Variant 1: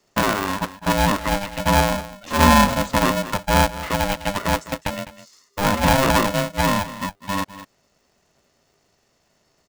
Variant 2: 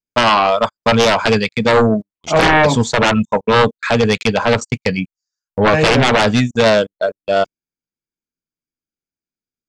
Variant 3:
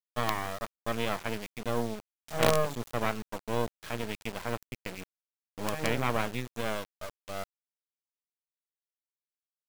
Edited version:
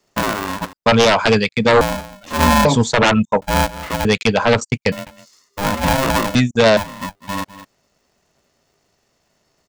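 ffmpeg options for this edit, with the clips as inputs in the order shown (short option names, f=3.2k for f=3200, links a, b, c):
-filter_complex "[1:a]asplit=4[a][b][c][d];[0:a]asplit=5[e][f][g][h][i];[e]atrim=end=0.732[j];[a]atrim=start=0.728:end=1.812[k];[f]atrim=start=1.808:end=2.652[l];[b]atrim=start=2.648:end=3.422[m];[g]atrim=start=3.418:end=4.052[n];[c]atrim=start=4.048:end=4.922[o];[h]atrim=start=4.918:end=6.352[p];[d]atrim=start=6.348:end=6.772[q];[i]atrim=start=6.768[r];[j][k]acrossfade=d=0.004:c1=hsin:c2=hsin[s];[s][l]acrossfade=d=0.004:c1=hsin:c2=hsin[t];[t][m]acrossfade=d=0.004:c1=hsin:c2=hsin[u];[u][n]acrossfade=d=0.004:c1=hsin:c2=hsin[v];[v][o]acrossfade=d=0.004:c1=hsin:c2=hsin[w];[w][p]acrossfade=d=0.004:c1=hsin:c2=hsin[x];[x][q]acrossfade=d=0.004:c1=hsin:c2=hsin[y];[y][r]acrossfade=d=0.004:c1=hsin:c2=hsin"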